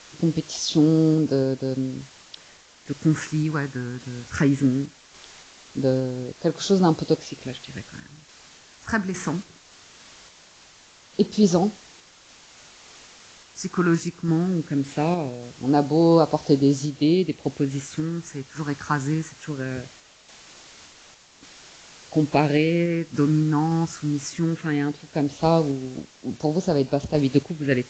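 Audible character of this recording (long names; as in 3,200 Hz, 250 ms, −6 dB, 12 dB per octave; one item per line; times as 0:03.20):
phaser sweep stages 4, 0.2 Hz, lowest notch 570–2,200 Hz
a quantiser's noise floor 8 bits, dither triangular
sample-and-hold tremolo
AAC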